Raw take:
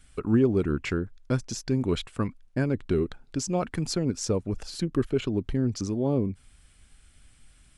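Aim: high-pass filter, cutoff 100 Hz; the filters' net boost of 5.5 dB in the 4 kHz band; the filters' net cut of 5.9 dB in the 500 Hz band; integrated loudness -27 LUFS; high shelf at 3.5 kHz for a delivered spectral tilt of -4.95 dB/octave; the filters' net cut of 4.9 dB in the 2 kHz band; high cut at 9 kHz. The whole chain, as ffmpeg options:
-af "highpass=100,lowpass=9000,equalizer=f=500:t=o:g=-8,equalizer=f=2000:t=o:g=-9,highshelf=f=3500:g=4.5,equalizer=f=4000:t=o:g=6,volume=1.41"

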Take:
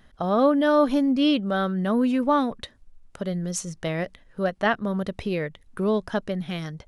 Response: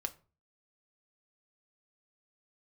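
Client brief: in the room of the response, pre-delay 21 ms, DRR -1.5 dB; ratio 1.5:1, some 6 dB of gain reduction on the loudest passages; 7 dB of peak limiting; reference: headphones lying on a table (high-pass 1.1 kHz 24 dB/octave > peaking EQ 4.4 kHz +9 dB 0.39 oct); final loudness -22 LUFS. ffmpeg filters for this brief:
-filter_complex "[0:a]acompressor=threshold=0.0282:ratio=1.5,alimiter=limit=0.0841:level=0:latency=1,asplit=2[s0][s1];[1:a]atrim=start_sample=2205,adelay=21[s2];[s1][s2]afir=irnorm=-1:irlink=0,volume=1.19[s3];[s0][s3]amix=inputs=2:normalize=0,highpass=f=1100:w=0.5412,highpass=f=1100:w=1.3066,equalizer=f=4400:t=o:w=0.39:g=9,volume=4.73"

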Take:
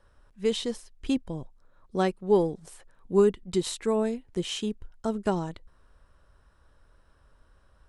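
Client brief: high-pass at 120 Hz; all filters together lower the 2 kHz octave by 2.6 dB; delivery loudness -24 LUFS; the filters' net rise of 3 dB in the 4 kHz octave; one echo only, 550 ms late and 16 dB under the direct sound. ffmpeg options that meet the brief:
-af "highpass=120,equalizer=f=2000:t=o:g=-5,equalizer=f=4000:t=o:g=5.5,aecho=1:1:550:0.158,volume=1.68"

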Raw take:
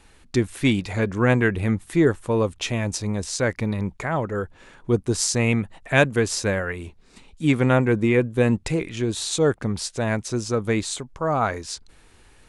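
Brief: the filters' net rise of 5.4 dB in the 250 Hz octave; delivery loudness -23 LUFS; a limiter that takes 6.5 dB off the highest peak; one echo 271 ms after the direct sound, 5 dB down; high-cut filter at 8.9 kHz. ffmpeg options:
-af "lowpass=8900,equalizer=f=250:t=o:g=6.5,alimiter=limit=0.355:level=0:latency=1,aecho=1:1:271:0.562,volume=0.75"

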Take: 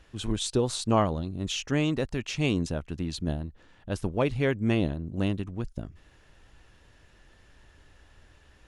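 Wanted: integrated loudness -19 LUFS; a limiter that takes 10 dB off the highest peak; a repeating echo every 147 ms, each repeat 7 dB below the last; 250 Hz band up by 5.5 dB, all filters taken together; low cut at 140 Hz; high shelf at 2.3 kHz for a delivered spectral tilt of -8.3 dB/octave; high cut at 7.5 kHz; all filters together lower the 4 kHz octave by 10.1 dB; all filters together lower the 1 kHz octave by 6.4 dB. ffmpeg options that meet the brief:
-af "highpass=140,lowpass=7500,equalizer=f=250:t=o:g=8,equalizer=f=1000:t=o:g=-8,highshelf=f=2300:g=-4,equalizer=f=4000:t=o:g=-9,alimiter=limit=0.106:level=0:latency=1,aecho=1:1:147|294|441|588|735:0.447|0.201|0.0905|0.0407|0.0183,volume=3.76"

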